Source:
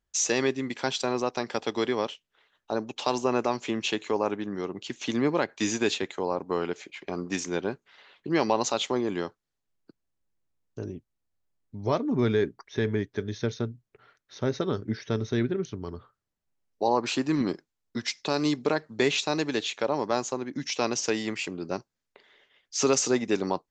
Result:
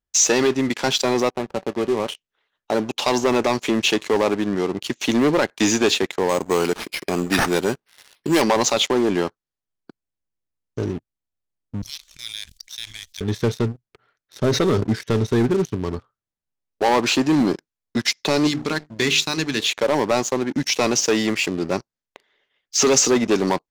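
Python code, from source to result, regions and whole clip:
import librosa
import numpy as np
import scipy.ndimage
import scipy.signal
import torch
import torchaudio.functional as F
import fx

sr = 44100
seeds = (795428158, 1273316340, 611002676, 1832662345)

y = fx.chain(x, sr, fx.median_filter(points=25),
    fx.bass_treble(bass_db=3, treble_db=-8),
    fx.comb_fb(f0_hz=190.0, decay_s=0.16, harmonics='all', damping=0.0, mix_pct=60), at=(1.3, 2.08))
y = fx.chain(y, sr, fx.high_shelf(hz=2700.0, db=8.5),
    fx.resample_bad(factor=6, down='none', up='hold'), at=(6.29, 8.42))
y = fx.chain(y, sr, fx.cheby2_bandstop(low_hz=200.0, high_hz=730.0, order=4, stop_db=80),
    fx.high_shelf(hz=5800.0, db=7.0),
    fx.env_flatten(amount_pct=70), at=(11.82, 13.21))
y = fx.chain(y, sr, fx.highpass(hz=72.0, slope=12),
    fx.env_flatten(amount_pct=50), at=(14.43, 14.84))
y = fx.chain(y, sr, fx.peak_eq(hz=600.0, db=-14.5, octaves=1.6),
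    fx.hum_notches(base_hz=50, count=9), at=(18.47, 19.61))
y = fx.high_shelf(y, sr, hz=3200.0, db=-11.5)
y = fx.leveller(y, sr, passes=3)
y = fx.peak_eq(y, sr, hz=7300.0, db=8.5, octaves=2.6)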